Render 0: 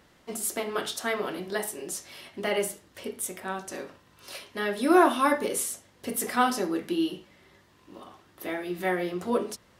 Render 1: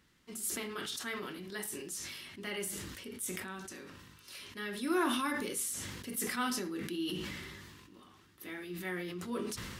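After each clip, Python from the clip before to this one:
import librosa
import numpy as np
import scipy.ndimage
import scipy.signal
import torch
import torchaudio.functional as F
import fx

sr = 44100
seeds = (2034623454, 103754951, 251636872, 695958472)

y = fx.peak_eq(x, sr, hz=650.0, db=-15.0, octaves=1.1)
y = fx.sustainer(y, sr, db_per_s=28.0)
y = y * librosa.db_to_amplitude(-7.0)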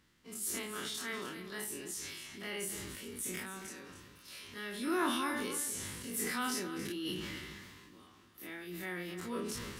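y = fx.spec_dilate(x, sr, span_ms=60)
y = y + 10.0 ** (-12.0 / 20.0) * np.pad(y, (int(276 * sr / 1000.0), 0))[:len(y)]
y = y * librosa.db_to_amplitude(-5.0)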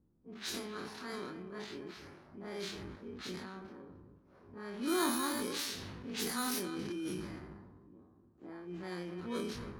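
y = fx.bit_reversed(x, sr, seeds[0], block=16)
y = fx.env_lowpass(y, sr, base_hz=440.0, full_db=-32.0)
y = y * librosa.db_to_amplitude(1.0)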